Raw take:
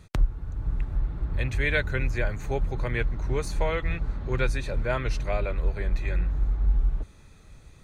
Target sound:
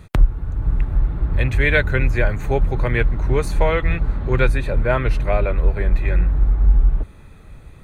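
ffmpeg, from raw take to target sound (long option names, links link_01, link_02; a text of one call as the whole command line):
ffmpeg -i in.wav -af "asetnsamples=nb_out_samples=441:pad=0,asendcmd='4.48 equalizer g -14.5',equalizer=frequency=5800:width=1.1:gain=-8.5,volume=9dB" out.wav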